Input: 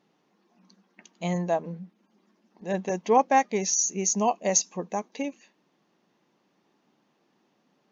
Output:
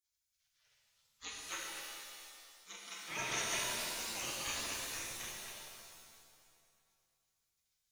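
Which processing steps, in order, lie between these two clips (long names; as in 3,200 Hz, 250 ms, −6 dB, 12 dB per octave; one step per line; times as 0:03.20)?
delay that plays each chunk backwards 128 ms, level −2 dB
0:01.29–0:03.06: high-pass filter 600 Hz 24 dB per octave
gate on every frequency bin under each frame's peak −30 dB weak
bucket-brigade delay 118 ms, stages 1,024, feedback 74%, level −11 dB
reverb with rising layers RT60 1.8 s, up +7 semitones, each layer −2 dB, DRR −2 dB
level +1 dB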